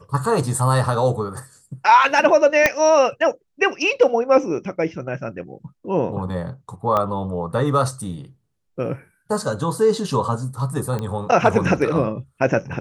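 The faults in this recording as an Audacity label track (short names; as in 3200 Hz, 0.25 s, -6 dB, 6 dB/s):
2.660000	2.660000	pop -1 dBFS
6.970000	6.970000	pop -10 dBFS
10.990000	10.990000	pop -15 dBFS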